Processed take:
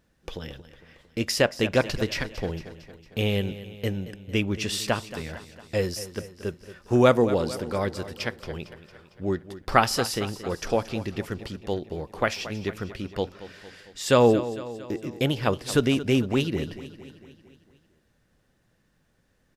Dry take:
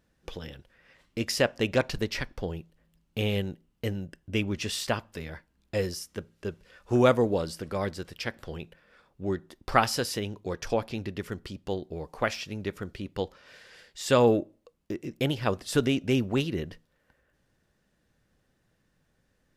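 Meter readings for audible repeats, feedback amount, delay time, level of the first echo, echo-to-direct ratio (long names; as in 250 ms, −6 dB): 5, 57%, 227 ms, −14.5 dB, −13.0 dB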